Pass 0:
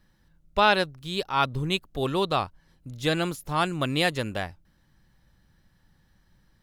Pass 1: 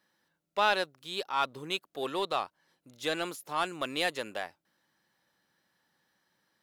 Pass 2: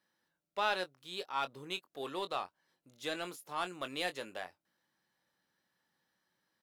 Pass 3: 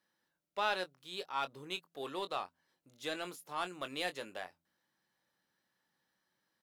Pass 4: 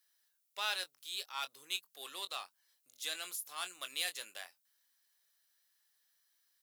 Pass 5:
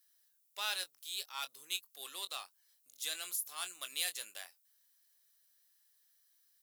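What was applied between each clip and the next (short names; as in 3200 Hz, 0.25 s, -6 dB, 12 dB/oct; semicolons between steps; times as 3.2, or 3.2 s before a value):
HPF 380 Hz 12 dB/oct; in parallel at -4 dB: soft clip -24.5 dBFS, distortion -6 dB; on the sum: gain -7.5 dB
doubler 22 ms -10.5 dB; gain -6.5 dB
de-hum 84.1 Hz, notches 3; gain -1 dB
differentiator; notch 900 Hz, Q 20; gain +10 dB
high shelf 5400 Hz +9 dB; gain -3 dB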